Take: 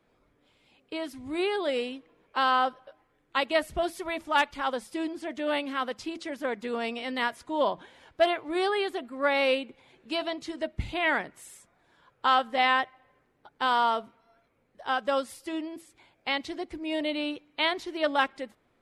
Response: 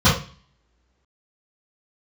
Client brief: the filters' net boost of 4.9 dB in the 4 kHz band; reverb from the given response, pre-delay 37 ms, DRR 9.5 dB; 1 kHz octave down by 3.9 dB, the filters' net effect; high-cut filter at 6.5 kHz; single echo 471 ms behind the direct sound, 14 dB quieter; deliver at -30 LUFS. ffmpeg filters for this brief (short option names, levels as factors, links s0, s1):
-filter_complex "[0:a]lowpass=6500,equalizer=f=1000:t=o:g=-5.5,equalizer=f=4000:t=o:g=7.5,aecho=1:1:471:0.2,asplit=2[s0][s1];[1:a]atrim=start_sample=2205,adelay=37[s2];[s1][s2]afir=irnorm=-1:irlink=0,volume=0.0266[s3];[s0][s3]amix=inputs=2:normalize=0,volume=0.891"